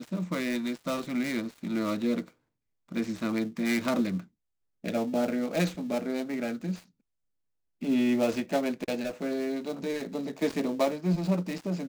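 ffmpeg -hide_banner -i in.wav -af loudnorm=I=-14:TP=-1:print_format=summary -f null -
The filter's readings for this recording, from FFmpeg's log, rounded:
Input Integrated:    -30.5 LUFS
Input True Peak:     -12.0 dBTP
Input LRA:             1.5 LU
Input Threshold:     -40.6 LUFS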